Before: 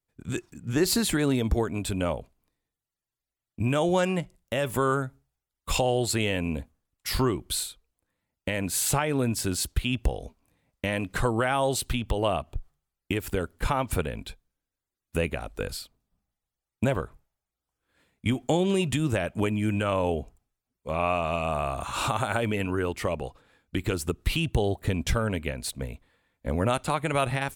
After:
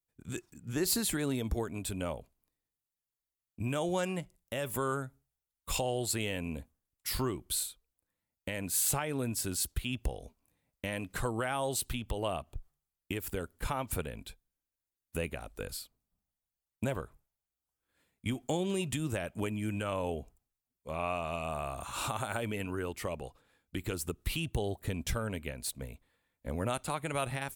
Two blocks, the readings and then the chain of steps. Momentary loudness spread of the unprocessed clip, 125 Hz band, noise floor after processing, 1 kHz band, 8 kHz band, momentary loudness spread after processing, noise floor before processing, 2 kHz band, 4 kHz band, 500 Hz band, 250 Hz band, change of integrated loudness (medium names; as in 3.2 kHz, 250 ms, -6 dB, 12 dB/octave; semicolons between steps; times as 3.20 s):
11 LU, -8.5 dB, under -85 dBFS, -8.5 dB, -3.0 dB, 11 LU, under -85 dBFS, -8.0 dB, -7.0 dB, -8.5 dB, -8.5 dB, -7.5 dB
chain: treble shelf 8.4 kHz +11 dB; trim -8.5 dB